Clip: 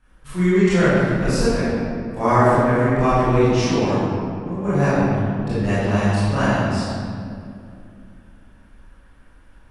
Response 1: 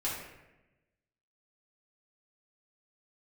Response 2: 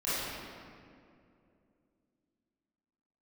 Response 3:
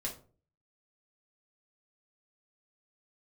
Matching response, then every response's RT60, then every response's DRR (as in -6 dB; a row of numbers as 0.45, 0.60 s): 2; 1.0, 2.5, 0.40 s; -7.5, -14.0, -3.0 dB